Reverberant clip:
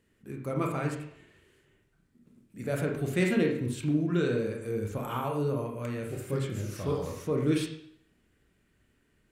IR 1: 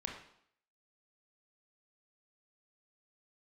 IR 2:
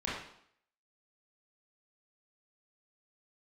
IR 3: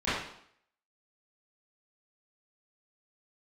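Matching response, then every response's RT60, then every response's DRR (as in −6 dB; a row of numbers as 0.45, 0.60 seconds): 1; 0.65, 0.65, 0.65 seconds; 0.5, −7.5, −15.0 decibels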